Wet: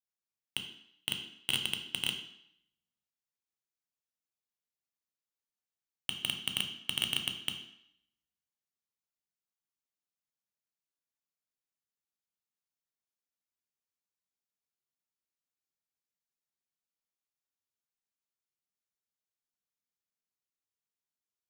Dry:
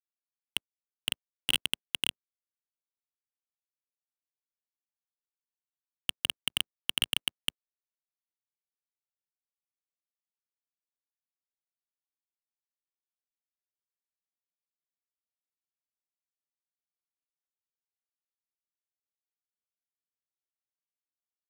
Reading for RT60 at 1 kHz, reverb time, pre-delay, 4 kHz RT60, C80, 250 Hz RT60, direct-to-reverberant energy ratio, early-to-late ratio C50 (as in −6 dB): 0.75 s, 0.70 s, 3 ms, 0.70 s, 11.0 dB, 0.70 s, 4.5 dB, 8.5 dB